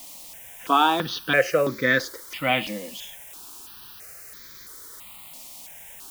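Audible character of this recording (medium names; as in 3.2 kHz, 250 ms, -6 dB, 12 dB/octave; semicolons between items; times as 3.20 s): a quantiser's noise floor 8-bit, dither triangular; notches that jump at a steady rate 3 Hz 410–2800 Hz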